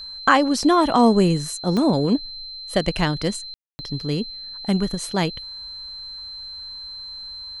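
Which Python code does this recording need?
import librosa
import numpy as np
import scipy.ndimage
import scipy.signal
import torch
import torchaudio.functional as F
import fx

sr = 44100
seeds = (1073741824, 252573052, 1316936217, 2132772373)

y = fx.fix_declick_ar(x, sr, threshold=10.0)
y = fx.notch(y, sr, hz=4100.0, q=30.0)
y = fx.fix_ambience(y, sr, seeds[0], print_start_s=6.14, print_end_s=6.64, start_s=3.54, end_s=3.79)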